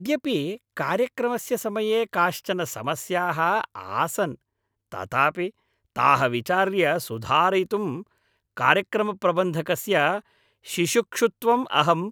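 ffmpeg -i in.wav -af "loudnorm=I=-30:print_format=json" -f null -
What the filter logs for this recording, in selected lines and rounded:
"input_i" : "-23.6",
"input_tp" : "-1.7",
"input_lra" : "3.4",
"input_thresh" : "-34.0",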